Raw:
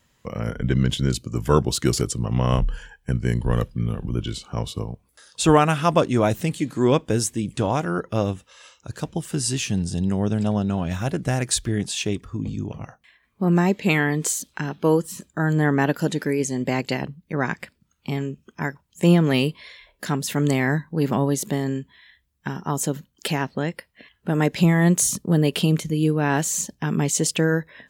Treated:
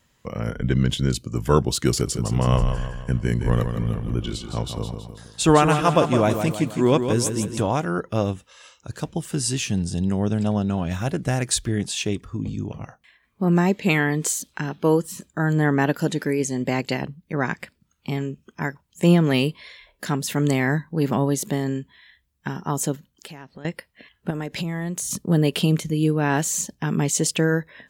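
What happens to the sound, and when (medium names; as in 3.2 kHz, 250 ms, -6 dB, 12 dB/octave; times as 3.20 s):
1.91–7.62 s: feedback delay 161 ms, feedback 48%, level -7.5 dB
22.95–23.65 s: compression 3:1, threshold -42 dBFS
24.30–25.11 s: compression 16:1, threshold -24 dBFS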